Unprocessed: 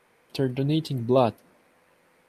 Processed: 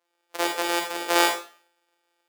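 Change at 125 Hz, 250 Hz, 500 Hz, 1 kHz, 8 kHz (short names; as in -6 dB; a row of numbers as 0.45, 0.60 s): under -30 dB, -6.5 dB, -3.5 dB, +5.5 dB, n/a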